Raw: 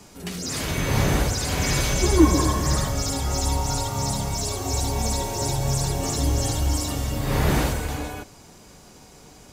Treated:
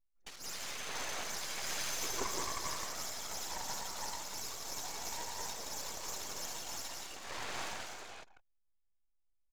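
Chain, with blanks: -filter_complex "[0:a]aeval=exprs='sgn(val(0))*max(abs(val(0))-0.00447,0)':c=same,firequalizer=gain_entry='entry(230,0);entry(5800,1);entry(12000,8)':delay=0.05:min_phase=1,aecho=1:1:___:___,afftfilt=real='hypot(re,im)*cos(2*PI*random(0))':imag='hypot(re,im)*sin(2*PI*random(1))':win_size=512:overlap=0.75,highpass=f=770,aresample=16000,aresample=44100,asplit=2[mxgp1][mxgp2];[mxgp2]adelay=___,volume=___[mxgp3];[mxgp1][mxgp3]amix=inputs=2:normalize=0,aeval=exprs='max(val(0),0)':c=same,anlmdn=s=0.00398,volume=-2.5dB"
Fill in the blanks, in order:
173, 0.631, 15, -12.5dB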